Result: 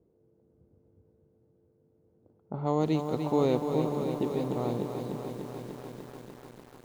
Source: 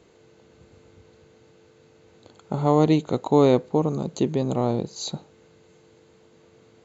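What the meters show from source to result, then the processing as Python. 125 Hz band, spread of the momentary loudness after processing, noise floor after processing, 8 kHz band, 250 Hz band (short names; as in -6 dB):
-7.5 dB, 19 LU, -68 dBFS, n/a, -7.0 dB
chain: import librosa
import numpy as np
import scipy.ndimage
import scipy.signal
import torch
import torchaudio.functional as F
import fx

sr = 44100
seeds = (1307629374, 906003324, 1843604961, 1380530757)

y = fx.echo_diffused(x, sr, ms=497, feedback_pct=43, wet_db=-14.5)
y = fx.env_lowpass(y, sr, base_hz=420.0, full_db=-16.0)
y = fx.echo_crushed(y, sr, ms=296, feedback_pct=80, bits=7, wet_db=-7)
y = y * 10.0 ** (-9.0 / 20.0)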